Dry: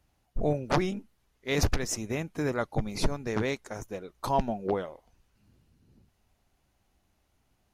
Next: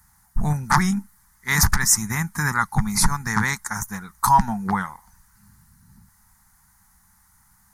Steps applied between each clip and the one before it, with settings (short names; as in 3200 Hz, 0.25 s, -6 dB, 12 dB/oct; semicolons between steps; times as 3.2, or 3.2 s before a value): EQ curve 130 Hz 0 dB, 200 Hz +4 dB, 280 Hz -14 dB, 590 Hz -25 dB, 870 Hz +7 dB, 1900 Hz +8 dB, 2700 Hz -13 dB, 4700 Hz +3 dB, 9000 Hz +15 dB; in parallel at +1 dB: limiter -17.5 dBFS, peak gain reduction 11 dB; on the sum: gain +2.5 dB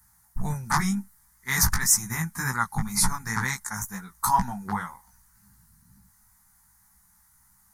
high shelf 6800 Hz +7 dB; chorus 2 Hz, delay 15.5 ms, depth 3.2 ms; gain -3 dB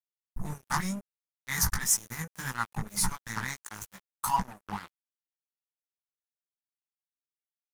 crossover distortion -33 dBFS; gain -4 dB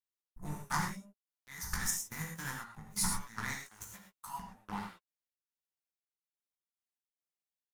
step gate "x.xx..x." 71 bpm -12 dB; non-linear reverb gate 0.14 s flat, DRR 1 dB; gain -5.5 dB